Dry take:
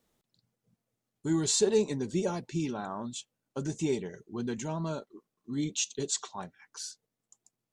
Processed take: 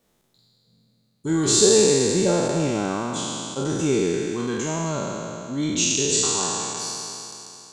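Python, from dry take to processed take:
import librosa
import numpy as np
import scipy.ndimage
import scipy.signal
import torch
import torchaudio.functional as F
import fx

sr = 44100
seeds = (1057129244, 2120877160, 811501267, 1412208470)

y = fx.spec_trails(x, sr, decay_s=2.98)
y = F.gain(torch.from_numpy(y), 5.0).numpy()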